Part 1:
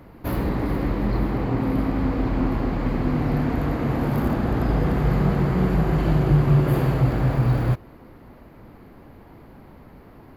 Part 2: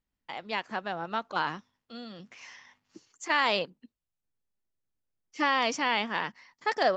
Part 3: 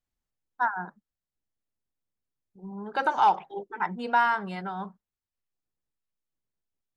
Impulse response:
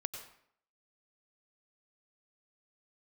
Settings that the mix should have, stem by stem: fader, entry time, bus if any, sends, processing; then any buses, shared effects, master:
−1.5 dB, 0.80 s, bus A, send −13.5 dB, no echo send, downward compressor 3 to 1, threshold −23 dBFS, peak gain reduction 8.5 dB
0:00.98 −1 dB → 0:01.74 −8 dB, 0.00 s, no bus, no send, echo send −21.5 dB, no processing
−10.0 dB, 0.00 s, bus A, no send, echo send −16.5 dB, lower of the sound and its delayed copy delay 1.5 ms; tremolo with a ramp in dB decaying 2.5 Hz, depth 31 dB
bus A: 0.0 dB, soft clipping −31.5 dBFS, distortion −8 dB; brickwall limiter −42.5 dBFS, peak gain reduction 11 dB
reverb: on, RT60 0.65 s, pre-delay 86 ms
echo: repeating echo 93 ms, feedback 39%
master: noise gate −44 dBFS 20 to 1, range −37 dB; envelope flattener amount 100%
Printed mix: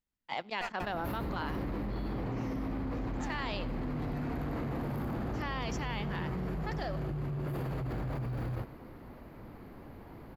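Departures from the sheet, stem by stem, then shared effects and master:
stem 1 −1.5 dB → −7.5 dB
stem 2 −1.0 dB → −8.5 dB

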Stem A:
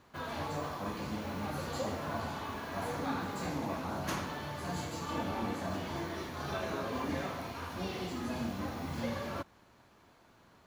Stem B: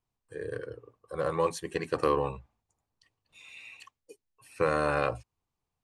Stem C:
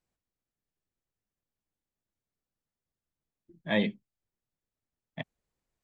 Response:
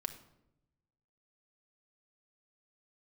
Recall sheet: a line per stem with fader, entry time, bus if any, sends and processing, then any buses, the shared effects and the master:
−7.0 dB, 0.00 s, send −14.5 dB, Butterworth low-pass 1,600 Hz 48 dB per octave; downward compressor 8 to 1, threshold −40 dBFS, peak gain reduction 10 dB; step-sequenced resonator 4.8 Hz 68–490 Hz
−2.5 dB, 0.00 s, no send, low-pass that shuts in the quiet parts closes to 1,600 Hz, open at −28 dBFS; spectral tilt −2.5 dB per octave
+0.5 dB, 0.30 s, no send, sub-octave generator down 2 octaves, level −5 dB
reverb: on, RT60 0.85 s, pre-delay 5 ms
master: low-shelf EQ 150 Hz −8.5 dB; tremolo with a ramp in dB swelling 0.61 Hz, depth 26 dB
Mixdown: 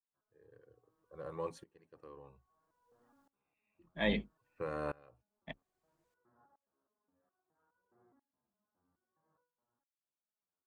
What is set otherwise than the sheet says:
stem A −7.0 dB → −14.0 dB
stem B −2.5 dB → −10.5 dB
stem C +0.5 dB → +9.5 dB

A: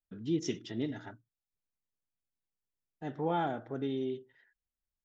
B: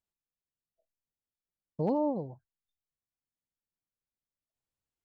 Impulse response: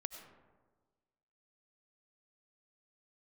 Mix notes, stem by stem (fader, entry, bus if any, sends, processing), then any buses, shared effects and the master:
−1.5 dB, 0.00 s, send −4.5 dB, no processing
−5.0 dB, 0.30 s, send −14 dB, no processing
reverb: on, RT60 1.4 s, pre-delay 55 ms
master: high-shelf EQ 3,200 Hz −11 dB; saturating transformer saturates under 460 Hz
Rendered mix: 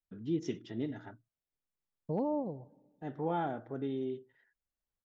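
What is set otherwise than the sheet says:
stem A: send off
master: missing saturating transformer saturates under 460 Hz

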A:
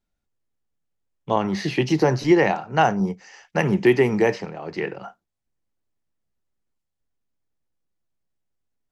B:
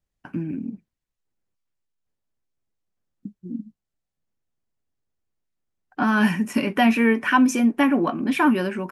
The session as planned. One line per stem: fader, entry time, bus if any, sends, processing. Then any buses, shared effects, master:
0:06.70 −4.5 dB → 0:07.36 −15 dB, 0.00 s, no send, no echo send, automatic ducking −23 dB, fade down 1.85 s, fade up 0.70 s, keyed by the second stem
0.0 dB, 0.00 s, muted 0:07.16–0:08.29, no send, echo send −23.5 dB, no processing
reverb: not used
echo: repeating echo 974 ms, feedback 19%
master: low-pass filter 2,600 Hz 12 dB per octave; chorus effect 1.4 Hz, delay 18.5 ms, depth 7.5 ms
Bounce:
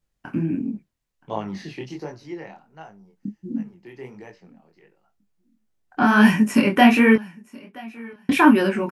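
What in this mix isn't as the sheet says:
stem B 0.0 dB → +7.5 dB
master: missing low-pass filter 2,600 Hz 12 dB per octave

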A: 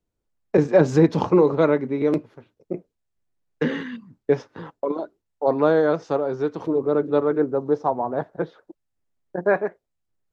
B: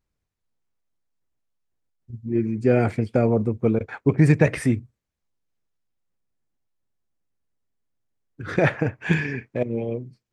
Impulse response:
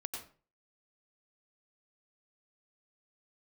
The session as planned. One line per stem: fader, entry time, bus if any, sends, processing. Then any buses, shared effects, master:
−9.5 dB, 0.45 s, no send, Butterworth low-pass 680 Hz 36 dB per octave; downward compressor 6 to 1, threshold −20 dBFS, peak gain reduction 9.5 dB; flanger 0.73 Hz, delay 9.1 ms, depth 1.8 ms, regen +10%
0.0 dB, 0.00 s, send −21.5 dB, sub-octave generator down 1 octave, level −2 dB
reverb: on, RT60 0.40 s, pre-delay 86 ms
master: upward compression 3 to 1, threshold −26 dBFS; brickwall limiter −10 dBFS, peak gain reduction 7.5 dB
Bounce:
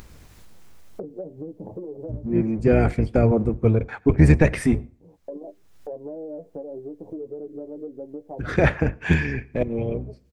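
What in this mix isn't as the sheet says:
stem A −9.5 dB → −17.0 dB
master: missing brickwall limiter −10 dBFS, peak gain reduction 7.5 dB

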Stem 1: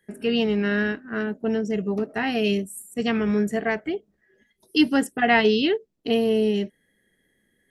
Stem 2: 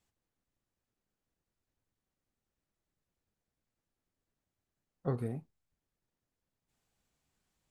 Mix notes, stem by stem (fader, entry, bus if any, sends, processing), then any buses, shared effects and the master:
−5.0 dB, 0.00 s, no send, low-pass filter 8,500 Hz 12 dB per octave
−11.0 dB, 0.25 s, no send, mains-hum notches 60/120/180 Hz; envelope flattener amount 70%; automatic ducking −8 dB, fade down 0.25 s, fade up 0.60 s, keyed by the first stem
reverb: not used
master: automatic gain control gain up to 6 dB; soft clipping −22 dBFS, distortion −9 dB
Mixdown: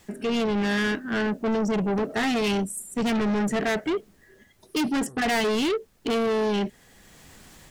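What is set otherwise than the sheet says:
stem 1 −5.0 dB → +3.0 dB
stem 2: entry 0.25 s → 0.00 s

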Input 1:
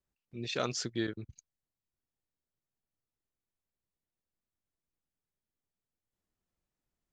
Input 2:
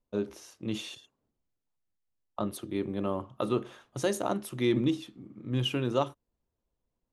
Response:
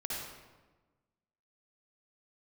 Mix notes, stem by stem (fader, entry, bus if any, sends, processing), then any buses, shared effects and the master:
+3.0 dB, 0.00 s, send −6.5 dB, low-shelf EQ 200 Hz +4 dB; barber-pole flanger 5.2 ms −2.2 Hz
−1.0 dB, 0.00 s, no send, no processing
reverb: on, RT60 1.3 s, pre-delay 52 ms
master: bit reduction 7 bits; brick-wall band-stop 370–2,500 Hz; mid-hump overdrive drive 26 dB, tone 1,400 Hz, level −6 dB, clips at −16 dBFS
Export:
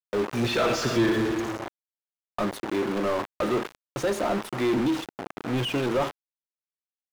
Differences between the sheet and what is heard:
stem 1 +3.0 dB → +10.0 dB
master: missing brick-wall band-stop 370–2,500 Hz

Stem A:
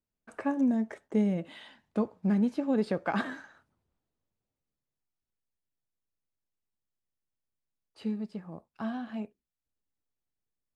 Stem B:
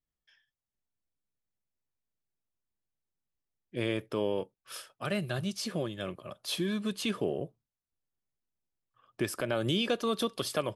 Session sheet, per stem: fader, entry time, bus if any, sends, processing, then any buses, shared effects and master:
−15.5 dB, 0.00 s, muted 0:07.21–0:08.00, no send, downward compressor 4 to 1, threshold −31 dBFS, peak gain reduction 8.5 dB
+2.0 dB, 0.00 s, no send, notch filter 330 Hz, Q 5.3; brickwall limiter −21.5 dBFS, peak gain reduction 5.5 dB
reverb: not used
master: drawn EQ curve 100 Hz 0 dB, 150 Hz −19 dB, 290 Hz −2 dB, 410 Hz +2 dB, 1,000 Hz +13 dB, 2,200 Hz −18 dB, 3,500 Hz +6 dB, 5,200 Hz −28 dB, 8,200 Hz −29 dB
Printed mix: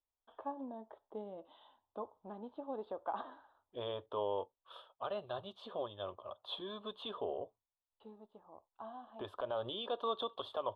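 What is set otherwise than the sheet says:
stem A: missing downward compressor 4 to 1, threshold −31 dBFS, peak gain reduction 8.5 dB
stem B +2.0 dB → −9.0 dB

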